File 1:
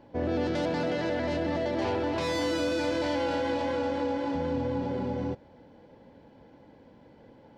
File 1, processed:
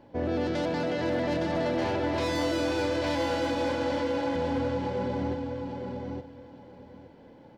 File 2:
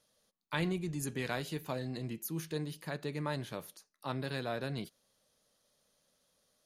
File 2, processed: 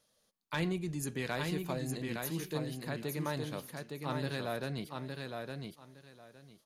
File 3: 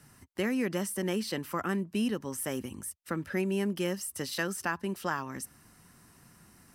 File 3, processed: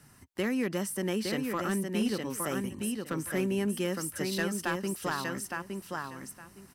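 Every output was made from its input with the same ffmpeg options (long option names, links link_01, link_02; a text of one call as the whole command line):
ffmpeg -i in.wav -af "aecho=1:1:863|1726|2589:0.596|0.113|0.0215,volume=22dB,asoftclip=hard,volume=-22dB" out.wav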